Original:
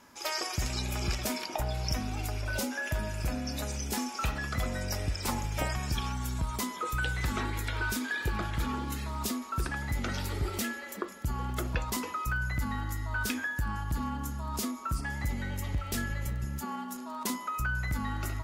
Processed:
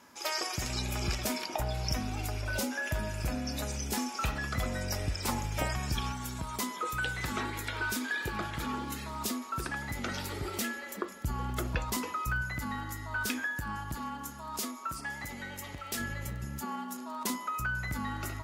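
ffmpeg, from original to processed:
ffmpeg -i in.wav -af "asetnsamples=nb_out_samples=441:pad=0,asendcmd='0.69 highpass f 41;6.12 highpass f 170;10.74 highpass f 42;12.42 highpass f 170;13.95 highpass f 450;16 highpass f 120',highpass=frequency=120:poles=1" out.wav

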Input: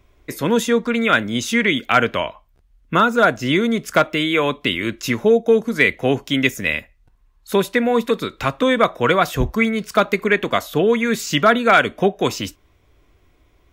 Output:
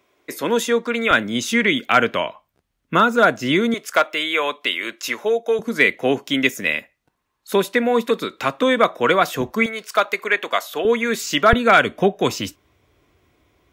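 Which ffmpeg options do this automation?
ffmpeg -i in.wav -af "asetnsamples=nb_out_samples=441:pad=0,asendcmd='1.11 highpass f 150;3.74 highpass f 550;5.59 highpass f 210;9.66 highpass f 590;10.85 highpass f 270;11.53 highpass f 88',highpass=300" out.wav

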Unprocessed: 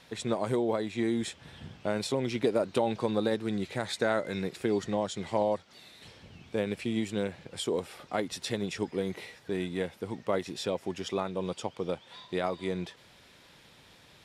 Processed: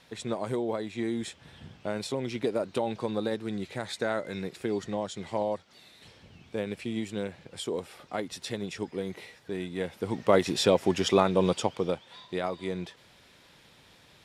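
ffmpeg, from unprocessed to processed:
ffmpeg -i in.wav -af "volume=9.5dB,afade=type=in:start_time=9.74:duration=0.76:silence=0.266073,afade=type=out:start_time=11.41:duration=0.67:silence=0.316228" out.wav

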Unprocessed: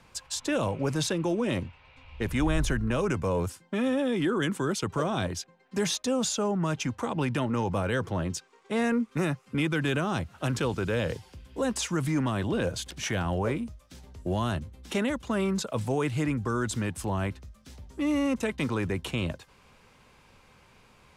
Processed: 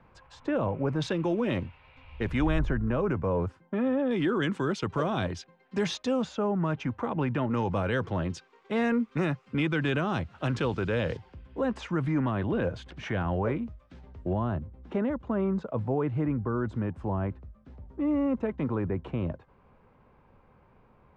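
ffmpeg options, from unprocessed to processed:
ffmpeg -i in.wav -af "asetnsamples=nb_out_samples=441:pad=0,asendcmd='1.02 lowpass f 3200;2.59 lowpass f 1500;4.11 lowpass f 3700;6.22 lowpass f 2000;7.51 lowpass f 3700;11.17 lowpass f 2000;14.33 lowpass f 1100',lowpass=1500" out.wav

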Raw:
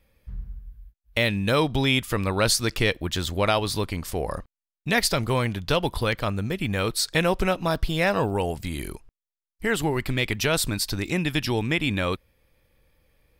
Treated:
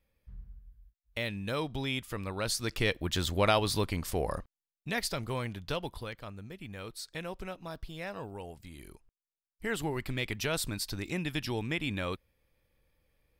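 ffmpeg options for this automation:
ffmpeg -i in.wav -af "volume=5dB,afade=type=in:start_time=2.45:duration=0.77:silence=0.375837,afade=type=out:start_time=4.24:duration=0.69:silence=0.421697,afade=type=out:start_time=5.7:duration=0.44:silence=0.473151,afade=type=in:start_time=8.78:duration=0.96:silence=0.375837" out.wav

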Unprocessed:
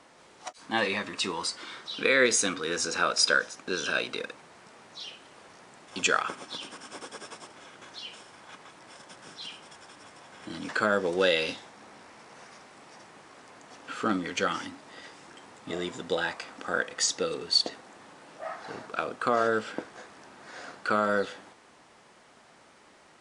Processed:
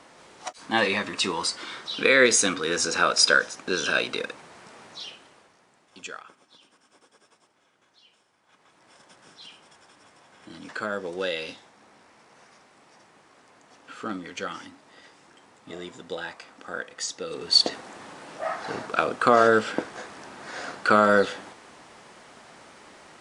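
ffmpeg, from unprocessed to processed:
ffmpeg -i in.wav -af "volume=29dB,afade=type=out:start_time=4.85:duration=0.66:silence=0.237137,afade=type=out:start_time=5.51:duration=0.79:silence=0.354813,afade=type=in:start_time=8.43:duration=0.58:silence=0.251189,afade=type=in:start_time=17.25:duration=0.44:silence=0.237137" out.wav

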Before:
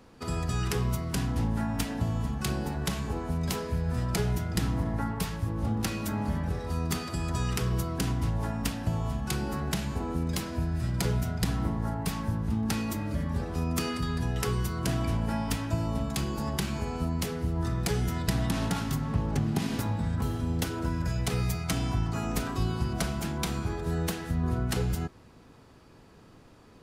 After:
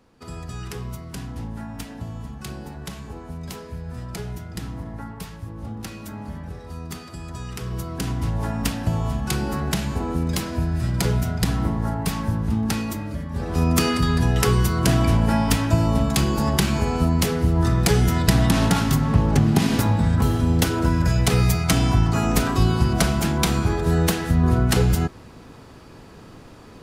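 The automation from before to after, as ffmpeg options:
ffmpeg -i in.wav -af "volume=18dB,afade=type=in:start_time=7.52:duration=1.11:silence=0.298538,afade=type=out:start_time=12.58:duration=0.72:silence=0.421697,afade=type=in:start_time=13.3:duration=0.33:silence=0.266073" out.wav

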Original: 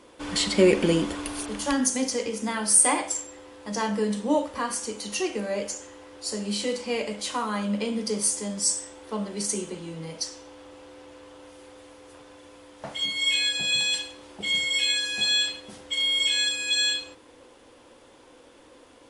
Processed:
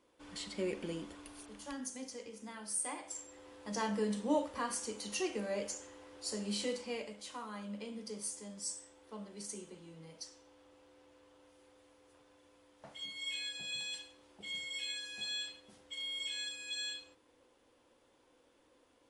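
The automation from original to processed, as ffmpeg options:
ffmpeg -i in.wav -af "volume=-8.5dB,afade=type=in:start_time=3.02:duration=0.48:silence=0.298538,afade=type=out:start_time=6.64:duration=0.5:silence=0.398107" out.wav

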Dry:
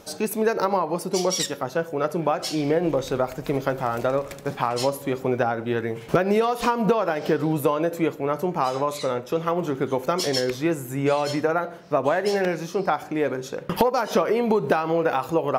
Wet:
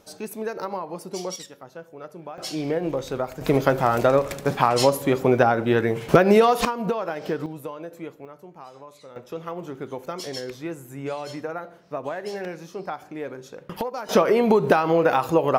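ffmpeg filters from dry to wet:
ffmpeg -i in.wav -af "asetnsamples=nb_out_samples=441:pad=0,asendcmd='1.36 volume volume -15dB;2.38 volume volume -3.5dB;3.41 volume volume 5dB;6.65 volume volume -5dB;7.46 volume volume -13dB;8.25 volume volume -19.5dB;9.16 volume volume -9dB;14.09 volume volume 3dB',volume=-8dB" out.wav

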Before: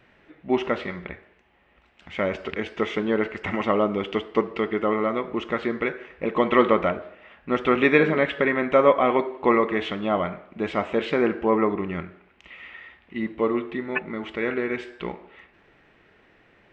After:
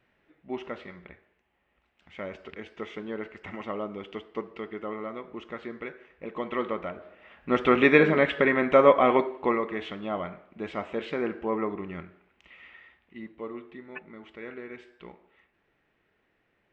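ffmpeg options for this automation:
ffmpeg -i in.wav -af "volume=-0.5dB,afade=type=in:start_time=6.92:duration=0.63:silence=0.266073,afade=type=out:start_time=9.16:duration=0.42:silence=0.421697,afade=type=out:start_time=12.67:duration=0.65:silence=0.473151" out.wav

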